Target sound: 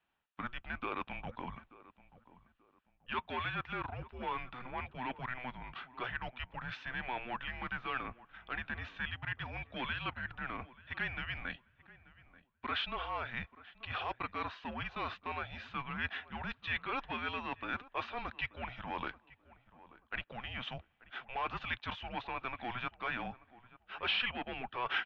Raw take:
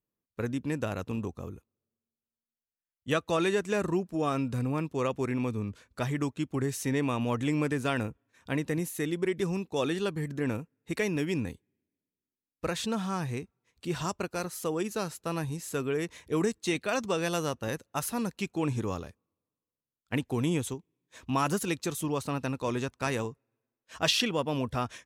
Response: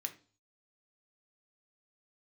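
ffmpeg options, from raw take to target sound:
-filter_complex "[0:a]bandreject=f=2.4k:w=9.4,asplit=2[a][b];[b]highpass=f=720:p=1,volume=18dB,asoftclip=type=tanh:threshold=-12dB[c];[a][c]amix=inputs=2:normalize=0,lowpass=f=1.9k:p=1,volume=-6dB,asubboost=boost=4:cutoff=120,areverse,acompressor=threshold=-38dB:ratio=16,areverse,highpass=f=170:t=q:w=0.5412,highpass=f=170:t=q:w=1.307,lowpass=f=3.5k:t=q:w=0.5176,lowpass=f=3.5k:t=q:w=0.7071,lowpass=f=3.5k:t=q:w=1.932,afreqshift=-250,tiltshelf=f=730:g=-8.5,asplit=2[d][e];[e]adelay=884,lowpass=f=1.4k:p=1,volume=-18dB,asplit=2[f][g];[g]adelay=884,lowpass=f=1.4k:p=1,volume=0.31,asplit=2[h][i];[i]adelay=884,lowpass=f=1.4k:p=1,volume=0.31[j];[d][f][h][j]amix=inputs=4:normalize=0,volume=4.5dB"

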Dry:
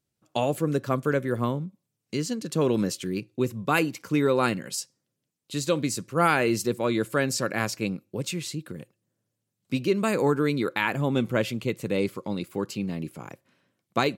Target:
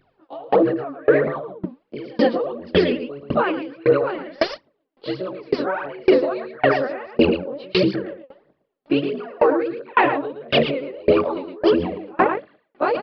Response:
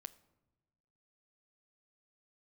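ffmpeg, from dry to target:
-filter_complex "[0:a]afftfilt=real='re':imag='-im':win_size=2048:overlap=0.75,aphaser=in_gain=1:out_gain=1:delay=4.4:decay=0.79:speed=1.4:type=triangular,acrossover=split=350 3300:gain=0.1 1 0.158[a][b][c];[a][b][c]amix=inputs=3:normalize=0,areverse,acompressor=threshold=-38dB:ratio=20,areverse,aecho=1:1:123:0.631,asetrate=48000,aresample=44100,aresample=11025,aresample=44100,tiltshelf=f=1.3k:g=9,alimiter=level_in=34.5dB:limit=-1dB:release=50:level=0:latency=1,aeval=exprs='val(0)*pow(10,-31*if(lt(mod(1.8*n/s,1),2*abs(1.8)/1000),1-mod(1.8*n/s,1)/(2*abs(1.8)/1000),(mod(1.8*n/s,1)-2*abs(1.8)/1000)/(1-2*abs(1.8)/1000))/20)':c=same,volume=-3dB"

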